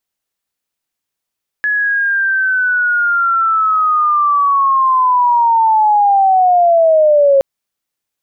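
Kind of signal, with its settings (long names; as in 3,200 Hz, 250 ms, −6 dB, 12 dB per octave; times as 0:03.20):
glide linear 1,700 Hz → 540 Hz −12 dBFS → −6 dBFS 5.77 s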